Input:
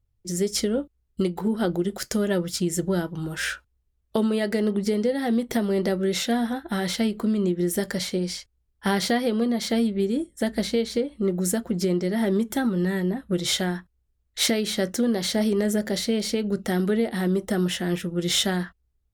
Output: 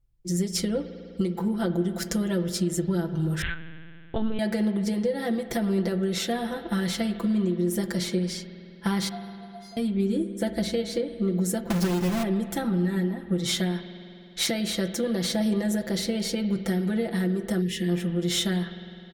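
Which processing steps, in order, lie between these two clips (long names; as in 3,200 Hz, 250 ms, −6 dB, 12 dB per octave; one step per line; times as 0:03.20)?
0:11.70–0:12.23: each half-wave held at its own peak
low-shelf EQ 200 Hz +5.5 dB
comb filter 5.9 ms, depth 88%
downward compressor, threshold −18 dBFS, peak gain reduction 8 dB
0:09.09–0:09.77: tuned comb filter 700 Hz, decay 0.36 s, mix 100%
spring reverb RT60 2.8 s, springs 51 ms, chirp 50 ms, DRR 10 dB
0:03.42–0:04.39: linear-prediction vocoder at 8 kHz pitch kept
0:17.62–0:17.89: gain on a spectral selection 530–1,700 Hz −16 dB
level −4 dB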